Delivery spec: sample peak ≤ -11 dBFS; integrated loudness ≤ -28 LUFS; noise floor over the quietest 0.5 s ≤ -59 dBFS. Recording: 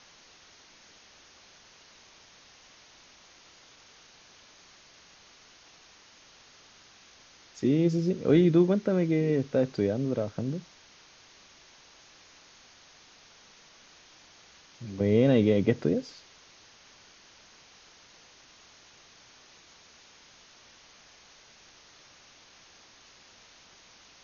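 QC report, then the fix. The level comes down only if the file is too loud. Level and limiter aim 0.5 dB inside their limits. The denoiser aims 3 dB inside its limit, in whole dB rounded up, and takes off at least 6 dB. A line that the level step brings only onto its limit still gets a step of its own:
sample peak -10.0 dBFS: fail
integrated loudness -26.0 LUFS: fail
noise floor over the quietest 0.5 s -56 dBFS: fail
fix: noise reduction 6 dB, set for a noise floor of -56 dBFS; trim -2.5 dB

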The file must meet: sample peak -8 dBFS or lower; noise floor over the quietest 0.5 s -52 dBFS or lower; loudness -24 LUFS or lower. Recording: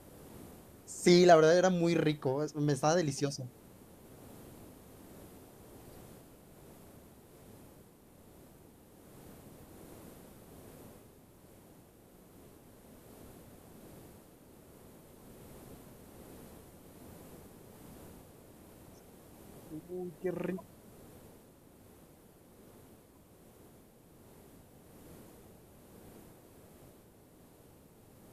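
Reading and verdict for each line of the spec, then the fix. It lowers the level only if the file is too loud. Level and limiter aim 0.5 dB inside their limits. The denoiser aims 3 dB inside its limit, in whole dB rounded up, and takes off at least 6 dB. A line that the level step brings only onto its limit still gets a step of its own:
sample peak -10.0 dBFS: pass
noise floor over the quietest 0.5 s -60 dBFS: pass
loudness -29.0 LUFS: pass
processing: none needed

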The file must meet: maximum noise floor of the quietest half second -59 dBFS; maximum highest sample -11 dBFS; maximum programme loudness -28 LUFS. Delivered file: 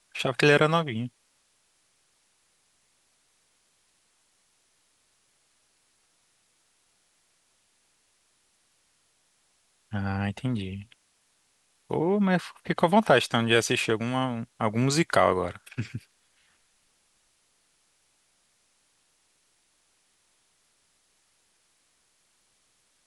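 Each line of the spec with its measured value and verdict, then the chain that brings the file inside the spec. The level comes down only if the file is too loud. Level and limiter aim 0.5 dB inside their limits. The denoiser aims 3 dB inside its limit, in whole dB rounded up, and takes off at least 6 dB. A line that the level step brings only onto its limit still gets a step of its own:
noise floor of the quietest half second -69 dBFS: pass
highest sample -5.5 dBFS: fail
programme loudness -25.5 LUFS: fail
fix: trim -3 dB; peak limiter -11.5 dBFS

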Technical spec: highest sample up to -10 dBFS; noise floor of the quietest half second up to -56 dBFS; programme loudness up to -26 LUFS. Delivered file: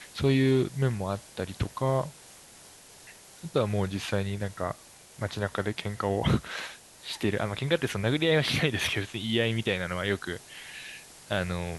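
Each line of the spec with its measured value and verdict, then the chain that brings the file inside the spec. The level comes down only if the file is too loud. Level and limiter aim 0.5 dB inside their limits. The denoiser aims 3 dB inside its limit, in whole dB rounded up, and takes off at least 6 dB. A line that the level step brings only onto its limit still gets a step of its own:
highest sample -9.0 dBFS: fail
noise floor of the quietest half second -52 dBFS: fail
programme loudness -29.0 LUFS: pass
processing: noise reduction 7 dB, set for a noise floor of -52 dBFS; peak limiter -10.5 dBFS

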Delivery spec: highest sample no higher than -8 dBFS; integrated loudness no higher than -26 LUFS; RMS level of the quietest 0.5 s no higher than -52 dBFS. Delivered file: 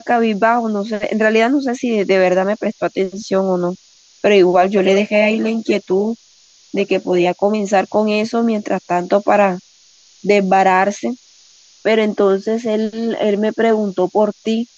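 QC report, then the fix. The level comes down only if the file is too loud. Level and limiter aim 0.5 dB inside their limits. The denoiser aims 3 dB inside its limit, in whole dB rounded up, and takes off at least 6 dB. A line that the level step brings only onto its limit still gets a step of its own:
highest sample -2.0 dBFS: fail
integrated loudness -16.0 LUFS: fail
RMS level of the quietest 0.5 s -50 dBFS: fail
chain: trim -10.5 dB

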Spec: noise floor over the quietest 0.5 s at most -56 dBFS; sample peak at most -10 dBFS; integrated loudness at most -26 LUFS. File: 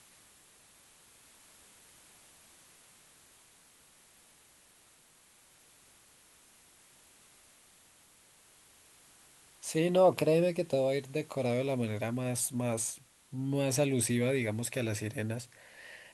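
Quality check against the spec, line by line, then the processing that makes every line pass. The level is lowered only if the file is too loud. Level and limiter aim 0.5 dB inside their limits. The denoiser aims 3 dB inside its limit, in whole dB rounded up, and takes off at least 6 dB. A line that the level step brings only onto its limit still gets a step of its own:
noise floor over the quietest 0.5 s -63 dBFS: pass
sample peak -14.5 dBFS: pass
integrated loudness -31.0 LUFS: pass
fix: none needed

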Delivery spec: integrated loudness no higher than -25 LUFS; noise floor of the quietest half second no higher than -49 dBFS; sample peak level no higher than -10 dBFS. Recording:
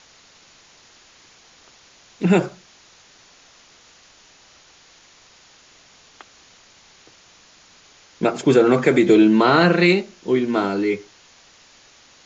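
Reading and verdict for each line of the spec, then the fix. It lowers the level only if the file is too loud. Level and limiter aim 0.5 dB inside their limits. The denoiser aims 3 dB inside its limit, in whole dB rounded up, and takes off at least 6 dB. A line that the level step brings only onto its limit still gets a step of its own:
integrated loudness -17.5 LUFS: fail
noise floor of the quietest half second -51 dBFS: pass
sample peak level -3.5 dBFS: fail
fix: trim -8 dB

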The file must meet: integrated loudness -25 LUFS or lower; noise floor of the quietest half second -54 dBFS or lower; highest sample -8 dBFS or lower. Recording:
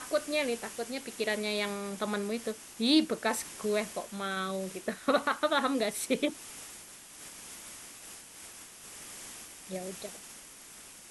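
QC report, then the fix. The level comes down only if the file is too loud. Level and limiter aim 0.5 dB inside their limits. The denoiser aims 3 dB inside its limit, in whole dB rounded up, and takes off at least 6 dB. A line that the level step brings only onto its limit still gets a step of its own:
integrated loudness -32.0 LUFS: pass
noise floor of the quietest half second -51 dBFS: fail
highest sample -13.0 dBFS: pass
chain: noise reduction 6 dB, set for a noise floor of -51 dBFS

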